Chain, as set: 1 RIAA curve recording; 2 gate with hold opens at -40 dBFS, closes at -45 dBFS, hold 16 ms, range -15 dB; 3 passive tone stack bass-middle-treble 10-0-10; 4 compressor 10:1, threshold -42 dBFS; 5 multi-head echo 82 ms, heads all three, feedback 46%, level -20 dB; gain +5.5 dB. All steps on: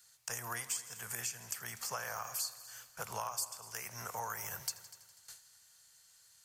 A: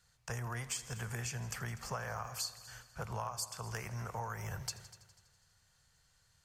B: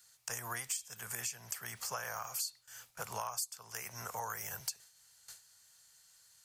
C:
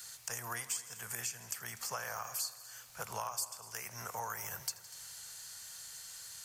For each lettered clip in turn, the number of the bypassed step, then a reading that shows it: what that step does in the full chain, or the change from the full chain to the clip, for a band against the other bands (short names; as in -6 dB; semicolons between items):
1, 125 Hz band +13.0 dB; 5, echo-to-direct -13.0 dB to none; 2, momentary loudness spread change -7 LU